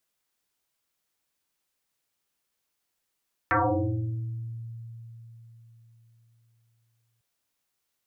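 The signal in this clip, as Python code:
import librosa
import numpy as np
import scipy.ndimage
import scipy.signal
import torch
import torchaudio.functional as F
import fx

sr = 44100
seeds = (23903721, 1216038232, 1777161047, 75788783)

y = fx.fm2(sr, length_s=3.7, level_db=-19, carrier_hz=115.0, ratio=1.82, index=9.1, index_s=1.3, decay_s=4.15, shape='exponential')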